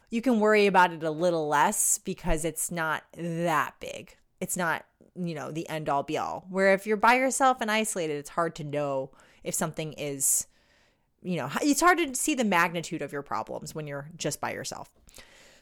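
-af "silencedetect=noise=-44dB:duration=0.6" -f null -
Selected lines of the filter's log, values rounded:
silence_start: 10.43
silence_end: 11.23 | silence_duration: 0.79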